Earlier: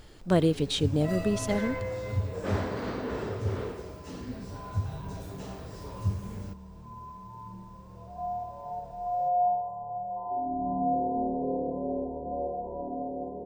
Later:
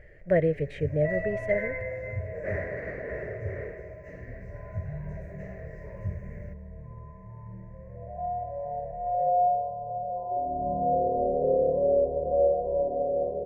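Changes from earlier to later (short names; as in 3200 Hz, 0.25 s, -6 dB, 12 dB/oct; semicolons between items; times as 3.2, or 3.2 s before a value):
first sound: add thirty-one-band EQ 100 Hz -7 dB, 500 Hz -6 dB, 3150 Hz -8 dB, 6300 Hz +8 dB; second sound +6.0 dB; master: add EQ curve 150 Hz 0 dB, 250 Hz -15 dB, 600 Hz +9 dB, 850 Hz -17 dB, 1300 Hz -15 dB, 1900 Hz +12 dB, 3500 Hz -26 dB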